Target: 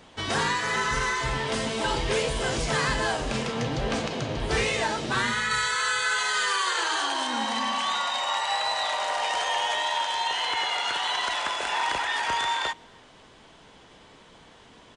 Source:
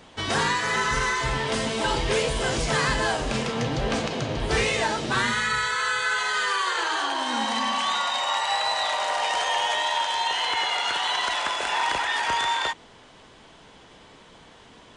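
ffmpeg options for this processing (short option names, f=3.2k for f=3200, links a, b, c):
-filter_complex "[0:a]asettb=1/sr,asplit=3[a][b][c];[a]atrim=end=5.514[d];[b]atrim=start=5.51:end=7.27,asetpts=PTS-STARTPTS,afade=t=in:d=0.004:c=qsin,afade=t=out:st=1.756:d=0.004:c=qsin,highshelf=f=4.4k:g=8[e];[c]atrim=start=7.266[f];[d][e]acrossfade=d=0.004:c1=hsin:c2=qsin[g];[g][f]acrossfade=d=0.004:c1=qsin:c2=hsin,asplit=2[h][i];[i]adelay=280,highpass=300,lowpass=3.4k,asoftclip=type=hard:threshold=-21.5dB,volume=-28dB[j];[h][j]amix=inputs=2:normalize=0,volume=-2dB"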